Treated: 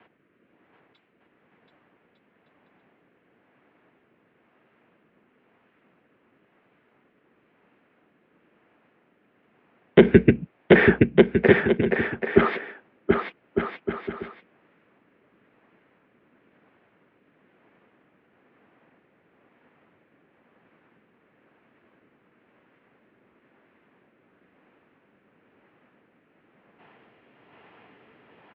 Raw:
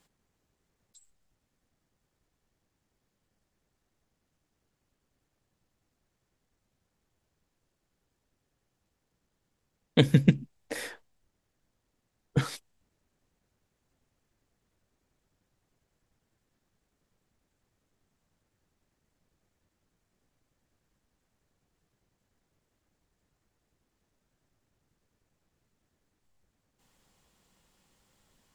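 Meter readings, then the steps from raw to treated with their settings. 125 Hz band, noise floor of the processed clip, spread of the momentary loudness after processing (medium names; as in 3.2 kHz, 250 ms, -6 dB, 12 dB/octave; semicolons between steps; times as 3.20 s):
+2.5 dB, -66 dBFS, 17 LU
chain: dynamic bell 500 Hz, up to +6 dB, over -36 dBFS, Q 0.83; in parallel at -1 dB: compression, threshold -31 dBFS, peak gain reduction 18 dB; on the sum: rotary cabinet horn 1 Hz; on a send: bouncing-ball echo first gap 730 ms, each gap 0.65×, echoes 5; on the sum: mistuned SSB -79 Hz 290–2700 Hz; loudness maximiser +16.5 dB; trim -1 dB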